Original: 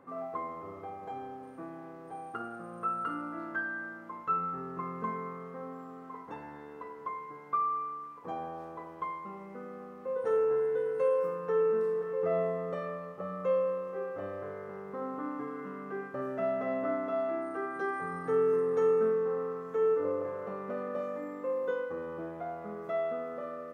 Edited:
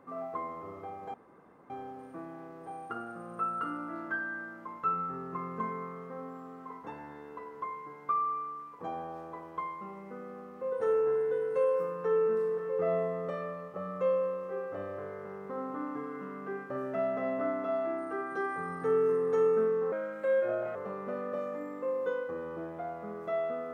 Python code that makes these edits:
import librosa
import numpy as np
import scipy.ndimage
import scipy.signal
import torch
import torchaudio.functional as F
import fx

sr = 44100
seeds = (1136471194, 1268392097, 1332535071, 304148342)

y = fx.edit(x, sr, fx.insert_room_tone(at_s=1.14, length_s=0.56),
    fx.speed_span(start_s=19.36, length_s=1.01, speed=1.21), tone=tone)